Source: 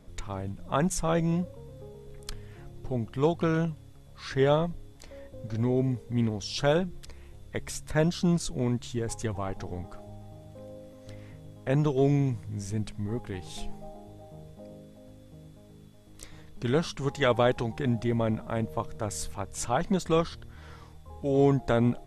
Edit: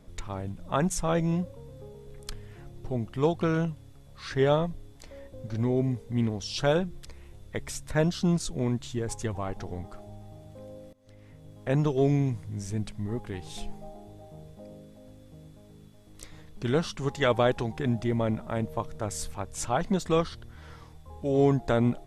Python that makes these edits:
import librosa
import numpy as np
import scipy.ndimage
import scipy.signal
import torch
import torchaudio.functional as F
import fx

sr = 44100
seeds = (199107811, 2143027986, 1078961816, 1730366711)

y = fx.edit(x, sr, fx.fade_in_from(start_s=10.93, length_s=0.7, floor_db=-20.5), tone=tone)